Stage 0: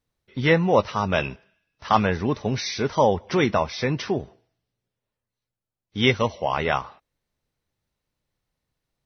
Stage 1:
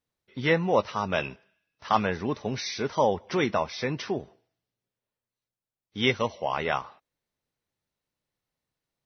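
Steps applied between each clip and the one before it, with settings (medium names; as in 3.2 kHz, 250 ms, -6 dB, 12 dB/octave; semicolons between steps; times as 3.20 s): bass shelf 92 Hz -11.5 dB; trim -4 dB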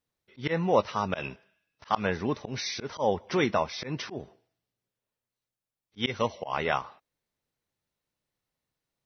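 slow attack 112 ms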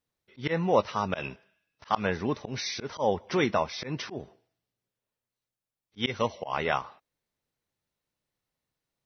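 no audible change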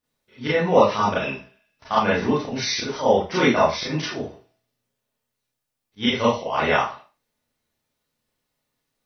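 Schroeder reverb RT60 0.31 s, combs from 26 ms, DRR -8 dB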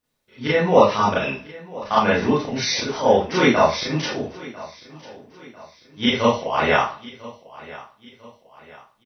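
feedback delay 997 ms, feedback 43%, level -19.5 dB; trim +2 dB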